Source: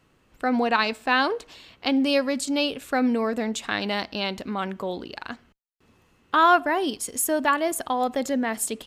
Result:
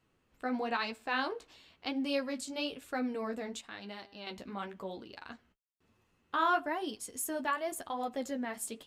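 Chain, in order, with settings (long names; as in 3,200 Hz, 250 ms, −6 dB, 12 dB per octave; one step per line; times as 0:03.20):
flanger 1 Hz, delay 8.3 ms, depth 8.2 ms, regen −25%
0:03.61–0:04.27: tuned comb filter 200 Hz, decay 1.5 s, mix 60%
level −8 dB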